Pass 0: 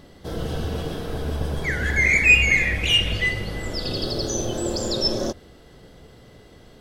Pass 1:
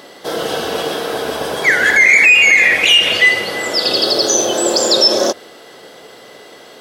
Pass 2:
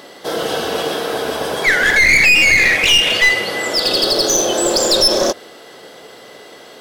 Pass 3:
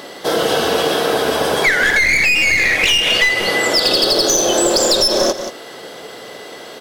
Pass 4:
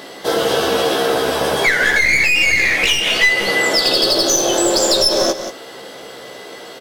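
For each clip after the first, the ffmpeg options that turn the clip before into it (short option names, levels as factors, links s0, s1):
-af "highpass=480,alimiter=level_in=6.31:limit=0.891:release=50:level=0:latency=1,volume=0.891"
-af "aeval=exprs='clip(val(0),-1,0.251)':c=same"
-af "aecho=1:1:180:0.188,acompressor=threshold=0.158:ratio=6,volume=1.78"
-filter_complex "[0:a]asplit=2[s0][s1];[s1]adelay=15,volume=0.596[s2];[s0][s2]amix=inputs=2:normalize=0,volume=0.794"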